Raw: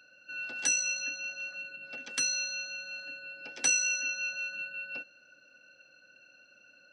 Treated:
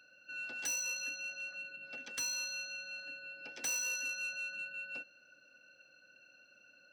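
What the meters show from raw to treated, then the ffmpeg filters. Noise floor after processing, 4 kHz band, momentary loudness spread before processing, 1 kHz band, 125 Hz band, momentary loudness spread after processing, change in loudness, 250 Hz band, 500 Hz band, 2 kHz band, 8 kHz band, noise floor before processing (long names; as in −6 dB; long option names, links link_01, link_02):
−65 dBFS, −6.5 dB, 15 LU, −4.5 dB, can't be measured, 11 LU, −6.5 dB, −6.5 dB, −4.5 dB, −5.5 dB, −8.0 dB, −61 dBFS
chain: -af "asoftclip=type=tanh:threshold=-29dB,volume=-3.5dB"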